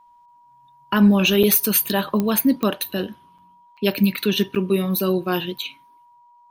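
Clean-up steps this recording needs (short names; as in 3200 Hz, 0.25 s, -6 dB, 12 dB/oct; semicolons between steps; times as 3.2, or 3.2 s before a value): de-click; notch 960 Hz, Q 30; interpolate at 1.43/3.38/3.77/4.55/5.58, 5.7 ms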